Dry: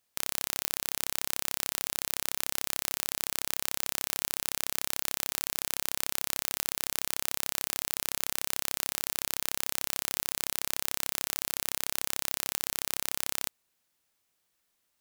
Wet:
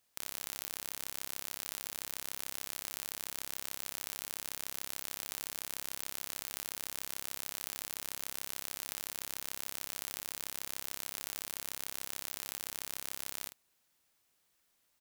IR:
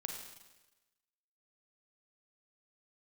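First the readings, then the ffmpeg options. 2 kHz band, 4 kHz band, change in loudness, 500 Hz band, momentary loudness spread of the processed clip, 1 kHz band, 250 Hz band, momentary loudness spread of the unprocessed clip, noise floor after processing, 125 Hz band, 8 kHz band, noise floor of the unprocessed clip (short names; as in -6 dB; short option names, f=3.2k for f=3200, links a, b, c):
-8.0 dB, -8.0 dB, -8.0 dB, -8.0 dB, 0 LU, -8.0 dB, -8.0 dB, 0 LU, -76 dBFS, -8.0 dB, -8.0 dB, -77 dBFS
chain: -filter_complex "[0:a]asoftclip=type=tanh:threshold=-12.5dB,asplit=2[a][b];[b]adelay=48,volume=-11dB[c];[a][c]amix=inputs=2:normalize=0,volume=1dB"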